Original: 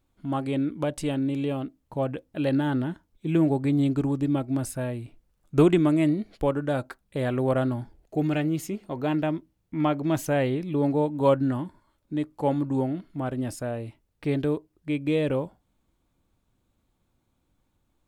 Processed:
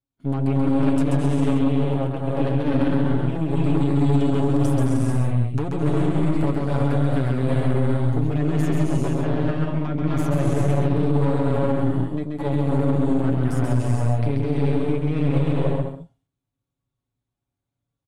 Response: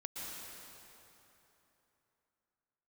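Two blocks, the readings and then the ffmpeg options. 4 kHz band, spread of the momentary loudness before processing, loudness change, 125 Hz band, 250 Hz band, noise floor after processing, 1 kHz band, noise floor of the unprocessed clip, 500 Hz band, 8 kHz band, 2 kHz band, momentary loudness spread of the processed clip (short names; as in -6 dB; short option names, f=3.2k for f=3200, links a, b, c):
+1.5 dB, 11 LU, +4.5 dB, +10.0 dB, +4.0 dB, -84 dBFS, +2.5 dB, -73 dBFS, +2.0 dB, n/a, +1.5 dB, 4 LU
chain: -filter_complex "[0:a]flanger=delay=7.4:depth=2.2:regen=58:speed=0.13:shape=triangular,highpass=60,acrossover=split=220|1500[a][b][c];[a]acompressor=threshold=-35dB:ratio=4[d];[b]acompressor=threshold=-36dB:ratio=4[e];[c]acompressor=threshold=-51dB:ratio=4[f];[d][e][f]amix=inputs=3:normalize=0,asplit=2[g][h];[h]aeval=exprs='0.15*sin(PI/2*3.16*val(0)/0.15)':c=same,volume=-5dB[i];[g][i]amix=inputs=2:normalize=0,agate=range=-20dB:threshold=-55dB:ratio=16:detection=peak,lowshelf=f=120:g=8.5[j];[1:a]atrim=start_sample=2205,afade=t=out:st=0.29:d=0.01,atrim=end_sample=13230,asetrate=23373,aresample=44100[k];[j][k]afir=irnorm=-1:irlink=0,aeval=exprs='0.501*(cos(1*acos(clip(val(0)/0.501,-1,1)))-cos(1*PI/2))+0.0708*(cos(3*acos(clip(val(0)/0.501,-1,1)))-cos(3*PI/2))+0.0355*(cos(8*acos(clip(val(0)/0.501,-1,1)))-cos(8*PI/2))':c=same,aecho=1:1:7.2:0.56,aecho=1:1:134:0.668,alimiter=level_in=8.5dB:limit=-1dB:release=50:level=0:latency=1,volume=-9dB"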